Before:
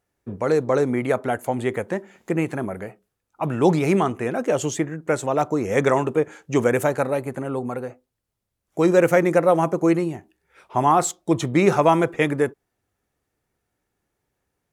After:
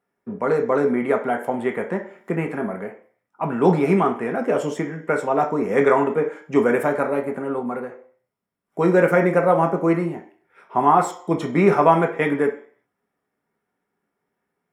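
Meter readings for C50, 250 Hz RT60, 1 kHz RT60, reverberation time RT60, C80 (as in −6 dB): 10.0 dB, 0.45 s, 0.55 s, 0.50 s, 15.0 dB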